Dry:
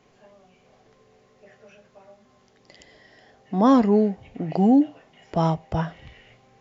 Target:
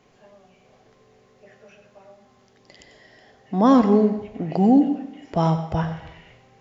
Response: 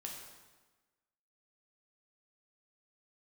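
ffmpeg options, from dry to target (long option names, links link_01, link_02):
-filter_complex "[0:a]asplit=2[link_01][link_02];[1:a]atrim=start_sample=2205,asetrate=61740,aresample=44100,adelay=93[link_03];[link_02][link_03]afir=irnorm=-1:irlink=0,volume=-4.5dB[link_04];[link_01][link_04]amix=inputs=2:normalize=0,volume=1dB"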